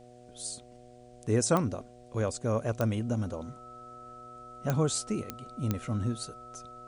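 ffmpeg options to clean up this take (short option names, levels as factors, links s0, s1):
-af "adeclick=t=4,bandreject=f=122.2:t=h:w=4,bandreject=f=244.4:t=h:w=4,bandreject=f=366.6:t=h:w=4,bandreject=f=488.8:t=h:w=4,bandreject=f=611:t=h:w=4,bandreject=f=733.2:t=h:w=4,bandreject=f=1300:w=30,agate=range=0.0891:threshold=0.00562"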